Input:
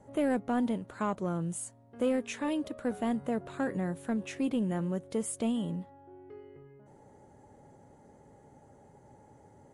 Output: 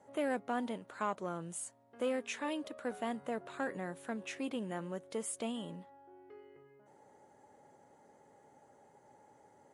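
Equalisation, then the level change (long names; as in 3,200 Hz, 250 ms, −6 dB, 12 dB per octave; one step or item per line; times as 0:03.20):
high-pass filter 690 Hz 6 dB per octave
high-shelf EQ 7,200 Hz −5 dB
0.0 dB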